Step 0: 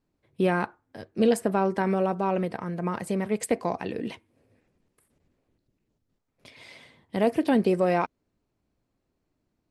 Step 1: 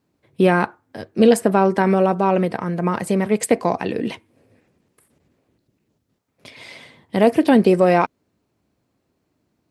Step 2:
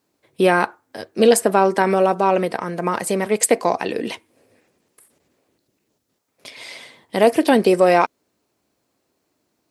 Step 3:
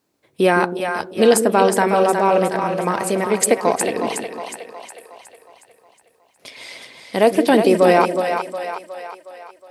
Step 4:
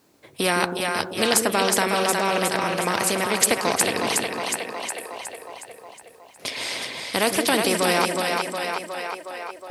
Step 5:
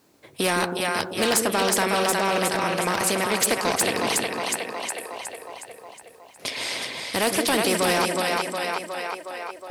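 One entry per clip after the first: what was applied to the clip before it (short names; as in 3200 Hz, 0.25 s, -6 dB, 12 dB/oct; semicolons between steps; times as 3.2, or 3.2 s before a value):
HPF 83 Hz; gain +8.5 dB
tone controls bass -11 dB, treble +6 dB; gain +2 dB
split-band echo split 490 Hz, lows 0.16 s, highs 0.364 s, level -6 dB
spectral compressor 2:1
hard clip -15 dBFS, distortion -14 dB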